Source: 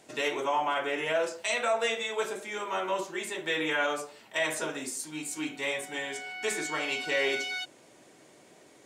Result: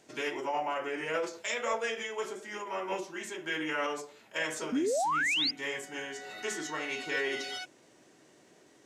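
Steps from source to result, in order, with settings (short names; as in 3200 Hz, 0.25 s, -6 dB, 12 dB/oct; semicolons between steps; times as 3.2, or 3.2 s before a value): formant shift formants -2 st; painted sound rise, 4.72–5.51, 230–5100 Hz -25 dBFS; gain -4 dB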